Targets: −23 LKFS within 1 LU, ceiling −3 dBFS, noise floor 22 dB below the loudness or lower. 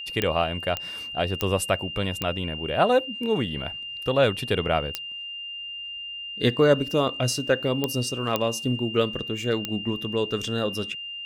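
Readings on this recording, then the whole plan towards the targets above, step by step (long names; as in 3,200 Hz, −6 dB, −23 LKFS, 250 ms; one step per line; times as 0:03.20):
number of clicks 8; interfering tone 2,800 Hz; level of the tone −33 dBFS; integrated loudness −25.5 LKFS; sample peak −6.0 dBFS; target loudness −23.0 LKFS
→ click removal
notch filter 2,800 Hz, Q 30
level +2.5 dB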